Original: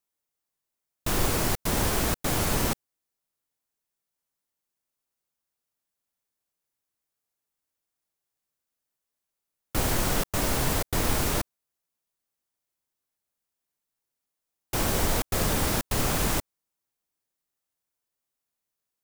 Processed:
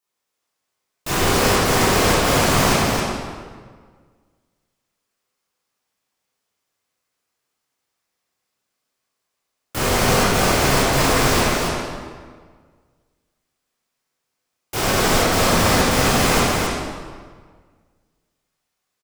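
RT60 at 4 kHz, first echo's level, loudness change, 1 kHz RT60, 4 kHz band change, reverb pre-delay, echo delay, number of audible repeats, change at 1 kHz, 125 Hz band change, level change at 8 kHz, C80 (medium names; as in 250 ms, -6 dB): 1.2 s, -3.0 dB, +9.5 dB, 1.6 s, +11.5 dB, 12 ms, 270 ms, 1, +13.0 dB, +8.5 dB, +8.0 dB, -2.0 dB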